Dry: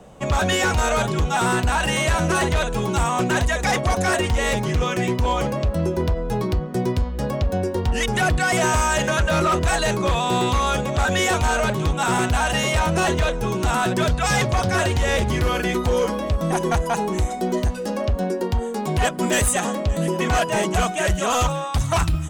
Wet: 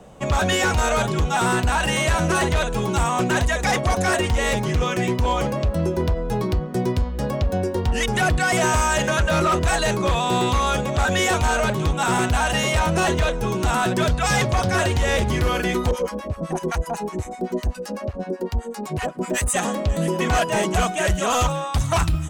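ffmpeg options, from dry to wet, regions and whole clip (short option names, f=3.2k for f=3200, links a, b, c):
-filter_complex "[0:a]asettb=1/sr,asplit=3[a][b][c];[a]atrim=end=15.914[d];[b]atrim=start=15.91:end=19.54,asetpts=PTS-STARTPTS,afade=t=in:d=0.004:c=qsin,afade=t=out:st=3.626:d=0.004:c=qsin,equalizer=f=3.4k:t=o:w=0.25:g=-5.5,acrossover=split=830[e][f];[e]aeval=exprs='val(0)*(1-1/2+1/2*cos(2*PI*7.9*n/s))':c=same[g];[f]aeval=exprs='val(0)*(1-1/2-1/2*cos(2*PI*7.9*n/s))':c=same[h];[g][h]amix=inputs=2:normalize=0[i];[c]atrim=start=19.536[j];[d][i]acrossfade=d=0.004:c1=hsin:c2=qsin[k];[k][j]acrossfade=d=0.004:c1=qsin:c2=hsin"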